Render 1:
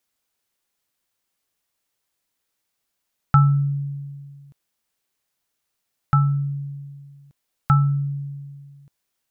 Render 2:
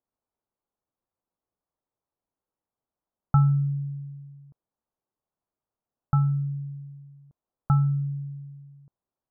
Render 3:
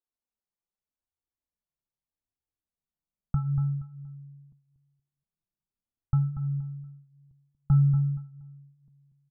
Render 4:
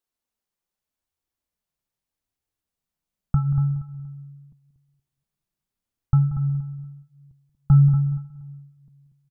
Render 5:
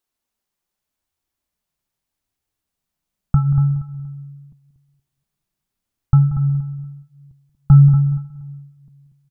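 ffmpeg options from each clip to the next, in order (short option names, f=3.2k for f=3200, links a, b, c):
-af "lowpass=f=1.1k:w=0.5412,lowpass=f=1.1k:w=1.3066,volume=-3.5dB"
-filter_complex "[0:a]asplit=2[a][b];[b]aecho=0:1:236|472|708:0.335|0.0871|0.0226[c];[a][c]amix=inputs=2:normalize=0,asubboost=boost=5.5:cutoff=220,flanger=delay=2.4:depth=3.5:regen=-21:speed=0.82:shape=sinusoidal,volume=-8dB"
-af "aecho=1:1:182|364|546:0.178|0.0445|0.0111,volume=6.5dB"
-af "bandreject=f=490:w=12,volume=5.5dB"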